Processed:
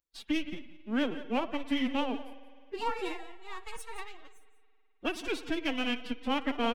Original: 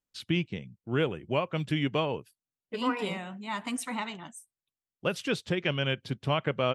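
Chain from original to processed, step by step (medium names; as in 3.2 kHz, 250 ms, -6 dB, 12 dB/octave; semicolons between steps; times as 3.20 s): partial rectifier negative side -7 dB; on a send: delay 178 ms -13.5 dB; on the sum: spring tank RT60 2.3 s, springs 53 ms, chirp 75 ms, DRR 10.5 dB; formant-preserving pitch shift +10.5 st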